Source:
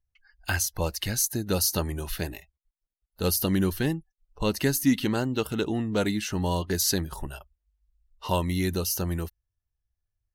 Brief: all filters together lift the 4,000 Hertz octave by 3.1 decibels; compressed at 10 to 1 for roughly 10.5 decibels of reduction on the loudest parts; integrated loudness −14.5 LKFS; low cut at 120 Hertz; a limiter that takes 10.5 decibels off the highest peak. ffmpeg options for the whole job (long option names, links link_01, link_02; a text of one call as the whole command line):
ffmpeg -i in.wav -af "highpass=120,equalizer=frequency=4000:width_type=o:gain=4,acompressor=threshold=-27dB:ratio=10,volume=21dB,alimiter=limit=-3dB:level=0:latency=1" out.wav